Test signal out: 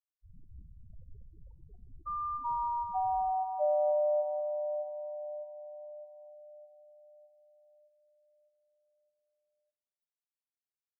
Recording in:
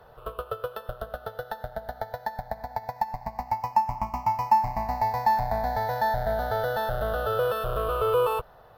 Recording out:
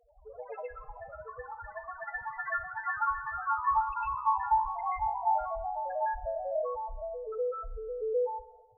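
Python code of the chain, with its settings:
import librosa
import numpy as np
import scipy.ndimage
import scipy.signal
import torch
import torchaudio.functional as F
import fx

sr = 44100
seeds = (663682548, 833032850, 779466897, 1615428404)

y = fx.spec_topn(x, sr, count=1)
y = fx.echo_pitch(y, sr, ms=88, semitones=4, count=3, db_per_echo=-3.0)
y = fx.rev_spring(y, sr, rt60_s=1.3, pass_ms=(31, 52), chirp_ms=30, drr_db=14.5)
y = y * librosa.db_to_amplitude(-1.0)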